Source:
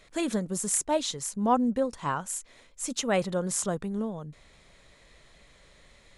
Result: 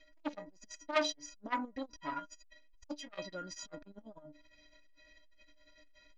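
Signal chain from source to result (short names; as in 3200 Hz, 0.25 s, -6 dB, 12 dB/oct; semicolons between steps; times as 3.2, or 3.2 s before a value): rippled Chebyshev low-pass 6500 Hz, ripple 6 dB; bell 1200 Hz -9.5 dB 0.97 oct; metallic resonator 290 Hz, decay 0.31 s, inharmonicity 0.03; core saturation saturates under 2000 Hz; gain +15.5 dB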